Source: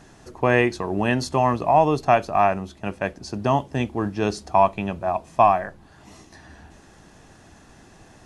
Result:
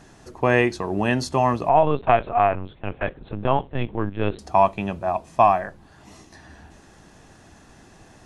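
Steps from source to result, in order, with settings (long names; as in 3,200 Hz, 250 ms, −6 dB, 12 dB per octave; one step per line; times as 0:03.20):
0:01.69–0:04.39: linear-prediction vocoder at 8 kHz pitch kept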